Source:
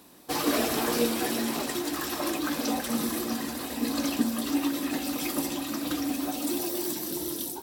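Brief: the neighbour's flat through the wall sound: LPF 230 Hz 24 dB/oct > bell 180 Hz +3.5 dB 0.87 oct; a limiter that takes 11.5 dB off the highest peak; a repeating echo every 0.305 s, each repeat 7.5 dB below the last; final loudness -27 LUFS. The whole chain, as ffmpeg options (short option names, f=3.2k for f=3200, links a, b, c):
-af "alimiter=limit=-24dB:level=0:latency=1,lowpass=f=230:w=0.5412,lowpass=f=230:w=1.3066,equalizer=f=180:t=o:w=0.87:g=3.5,aecho=1:1:305|610|915|1220|1525:0.422|0.177|0.0744|0.0312|0.0131,volume=13.5dB"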